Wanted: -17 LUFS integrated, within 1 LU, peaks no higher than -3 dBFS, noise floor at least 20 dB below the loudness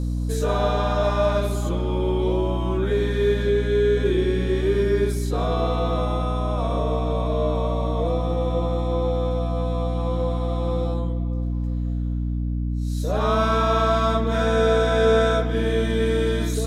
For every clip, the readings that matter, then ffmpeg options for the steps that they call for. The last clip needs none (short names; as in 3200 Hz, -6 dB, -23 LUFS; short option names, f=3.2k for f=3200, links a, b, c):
hum 60 Hz; harmonics up to 300 Hz; hum level -22 dBFS; loudness -22.5 LUFS; peak -7.0 dBFS; loudness target -17.0 LUFS
-> -af "bandreject=f=60:t=h:w=4,bandreject=f=120:t=h:w=4,bandreject=f=180:t=h:w=4,bandreject=f=240:t=h:w=4,bandreject=f=300:t=h:w=4"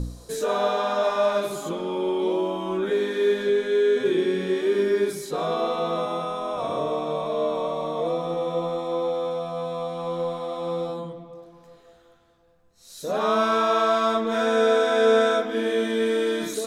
hum none; loudness -24.0 LUFS; peak -9.0 dBFS; loudness target -17.0 LUFS
-> -af "volume=7dB,alimiter=limit=-3dB:level=0:latency=1"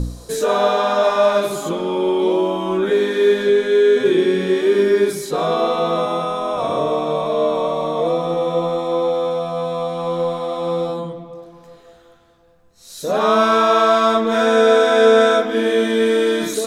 loudness -17.0 LUFS; peak -3.0 dBFS; noise floor -48 dBFS